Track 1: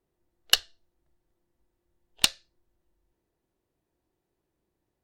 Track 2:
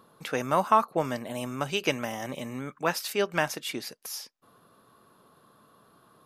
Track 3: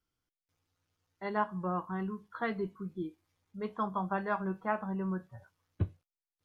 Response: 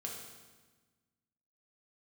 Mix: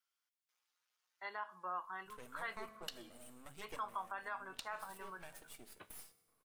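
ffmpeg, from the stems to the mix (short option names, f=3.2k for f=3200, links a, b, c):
-filter_complex "[0:a]adelay=2350,volume=-18.5dB,asplit=2[a][b];[b]volume=-15.5dB[c];[1:a]highshelf=f=7.1k:t=q:w=3:g=6.5,aeval=exprs='max(val(0),0)':c=same,adelay=1850,volume=-19.5dB,asplit=2[d][e];[e]volume=-9dB[f];[2:a]highpass=1.1k,volume=0dB,asplit=2[g][h];[h]apad=whole_len=357586[i];[d][i]sidechaincompress=threshold=-42dB:ratio=8:attack=32:release=1110[j];[3:a]atrim=start_sample=2205[k];[c][f]amix=inputs=2:normalize=0[l];[l][k]afir=irnorm=-1:irlink=0[m];[a][j][g][m]amix=inputs=4:normalize=0,alimiter=level_in=8dB:limit=-24dB:level=0:latency=1:release=90,volume=-8dB"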